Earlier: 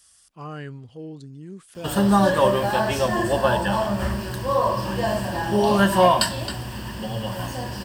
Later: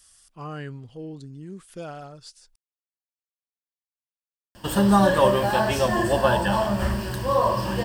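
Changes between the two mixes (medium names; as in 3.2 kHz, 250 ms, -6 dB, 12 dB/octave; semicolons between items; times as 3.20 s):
background: entry +2.80 s; master: remove high-pass 51 Hz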